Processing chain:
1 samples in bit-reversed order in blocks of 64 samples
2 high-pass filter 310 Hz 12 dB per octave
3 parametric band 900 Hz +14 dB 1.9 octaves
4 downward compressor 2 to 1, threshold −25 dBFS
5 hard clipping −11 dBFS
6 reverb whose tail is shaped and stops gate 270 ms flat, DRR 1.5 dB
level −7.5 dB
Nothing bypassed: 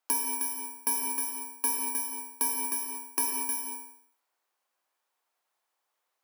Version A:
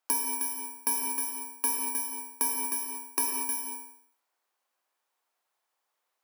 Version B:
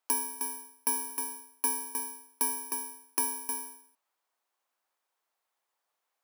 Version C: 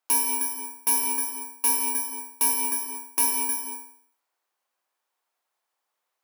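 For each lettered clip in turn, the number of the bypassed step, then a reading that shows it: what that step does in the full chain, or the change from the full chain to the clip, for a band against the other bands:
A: 5, distortion level −23 dB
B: 6, 500 Hz band +2.5 dB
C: 4, average gain reduction 3.5 dB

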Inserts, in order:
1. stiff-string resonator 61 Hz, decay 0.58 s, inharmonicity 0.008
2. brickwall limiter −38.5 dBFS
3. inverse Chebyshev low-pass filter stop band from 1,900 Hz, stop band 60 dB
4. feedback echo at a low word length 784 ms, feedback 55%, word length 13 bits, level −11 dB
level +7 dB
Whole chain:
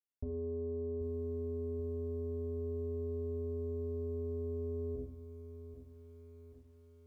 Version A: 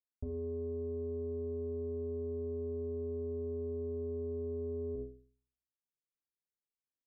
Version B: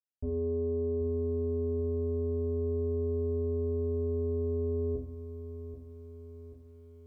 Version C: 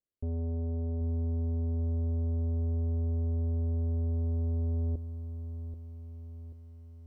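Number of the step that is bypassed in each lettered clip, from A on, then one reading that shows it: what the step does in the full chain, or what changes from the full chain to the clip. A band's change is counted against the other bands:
4, change in momentary loudness spread −15 LU
2, average gain reduction 7.0 dB
1, change in crest factor −4.5 dB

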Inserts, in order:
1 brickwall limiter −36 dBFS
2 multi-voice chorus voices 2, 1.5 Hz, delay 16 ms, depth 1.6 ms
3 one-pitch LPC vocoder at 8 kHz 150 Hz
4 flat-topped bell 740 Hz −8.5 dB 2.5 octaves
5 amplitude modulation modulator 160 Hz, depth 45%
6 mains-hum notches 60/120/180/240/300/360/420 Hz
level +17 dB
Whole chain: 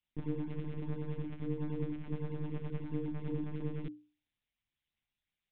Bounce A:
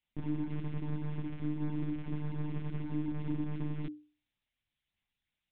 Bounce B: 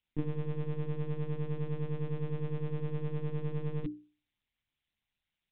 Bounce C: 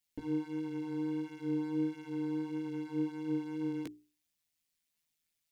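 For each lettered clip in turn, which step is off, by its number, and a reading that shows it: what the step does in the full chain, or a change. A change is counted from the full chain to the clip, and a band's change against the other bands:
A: 5, change in crest factor −3.0 dB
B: 2, 250 Hz band −4.0 dB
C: 3, 125 Hz band −11.0 dB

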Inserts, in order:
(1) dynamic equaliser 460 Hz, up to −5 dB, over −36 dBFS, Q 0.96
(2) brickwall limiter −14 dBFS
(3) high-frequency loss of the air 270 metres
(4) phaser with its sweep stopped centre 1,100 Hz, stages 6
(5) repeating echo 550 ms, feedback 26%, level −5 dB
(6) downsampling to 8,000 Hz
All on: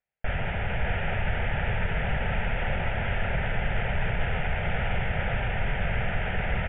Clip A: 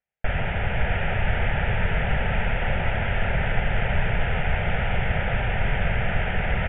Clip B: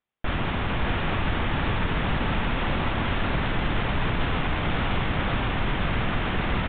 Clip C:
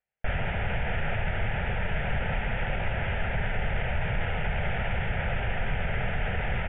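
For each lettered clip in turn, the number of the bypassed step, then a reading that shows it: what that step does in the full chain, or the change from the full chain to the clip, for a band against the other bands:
2, average gain reduction 3.5 dB
4, change in integrated loudness +2.5 LU
5, change in integrated loudness −1.0 LU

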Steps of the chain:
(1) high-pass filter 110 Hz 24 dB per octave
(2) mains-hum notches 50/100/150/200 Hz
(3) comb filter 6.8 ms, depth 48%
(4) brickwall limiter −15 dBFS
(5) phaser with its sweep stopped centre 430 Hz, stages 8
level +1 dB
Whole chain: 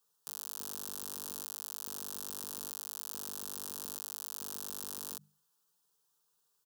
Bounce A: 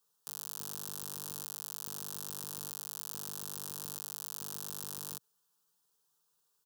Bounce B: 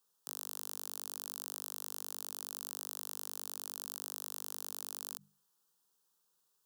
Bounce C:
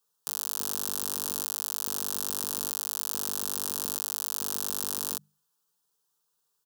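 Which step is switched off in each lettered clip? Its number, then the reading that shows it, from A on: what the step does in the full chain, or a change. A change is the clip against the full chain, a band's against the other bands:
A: 2, 250 Hz band +2.5 dB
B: 3, 250 Hz band +2.0 dB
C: 4, average gain reduction 9.0 dB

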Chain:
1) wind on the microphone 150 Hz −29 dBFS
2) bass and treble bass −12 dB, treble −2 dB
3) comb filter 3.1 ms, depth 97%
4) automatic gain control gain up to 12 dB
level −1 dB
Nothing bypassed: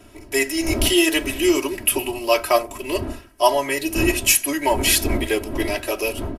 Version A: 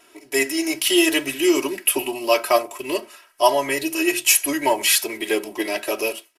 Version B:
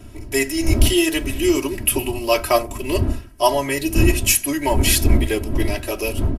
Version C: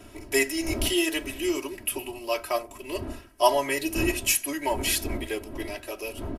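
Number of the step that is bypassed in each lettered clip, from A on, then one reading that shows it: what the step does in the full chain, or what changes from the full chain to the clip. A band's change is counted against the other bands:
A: 1, 125 Hz band −16.5 dB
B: 2, 125 Hz band +10.0 dB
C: 4, 1 kHz band +1.5 dB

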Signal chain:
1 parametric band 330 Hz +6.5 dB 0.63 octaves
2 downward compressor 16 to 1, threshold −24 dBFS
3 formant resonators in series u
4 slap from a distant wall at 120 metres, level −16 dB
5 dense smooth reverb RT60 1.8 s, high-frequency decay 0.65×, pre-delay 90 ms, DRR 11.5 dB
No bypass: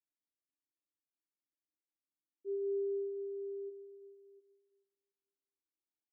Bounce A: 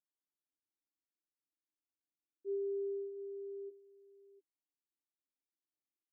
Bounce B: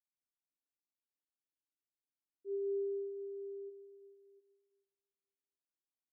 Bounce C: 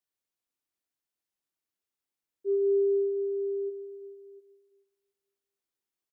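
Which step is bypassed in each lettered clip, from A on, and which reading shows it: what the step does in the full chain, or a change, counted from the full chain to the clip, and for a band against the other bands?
5, echo-to-direct ratio −10.5 dB to −18.0 dB
1, change in integrated loudness −1.5 LU
3, change in integrated loudness +11.0 LU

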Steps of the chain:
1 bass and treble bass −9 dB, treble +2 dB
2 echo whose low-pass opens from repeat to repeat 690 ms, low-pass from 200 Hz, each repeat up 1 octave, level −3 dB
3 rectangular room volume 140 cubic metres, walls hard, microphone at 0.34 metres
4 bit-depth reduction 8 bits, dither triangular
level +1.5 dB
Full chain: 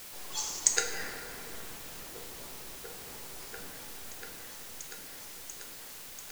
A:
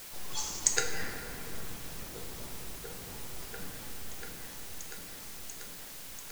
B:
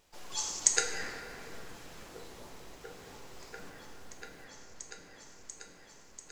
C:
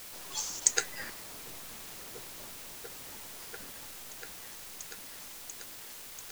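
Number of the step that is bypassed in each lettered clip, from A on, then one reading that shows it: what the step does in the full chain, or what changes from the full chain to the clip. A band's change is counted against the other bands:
1, 125 Hz band +7.5 dB
4, distortion level −7 dB
3, 8 kHz band +1.5 dB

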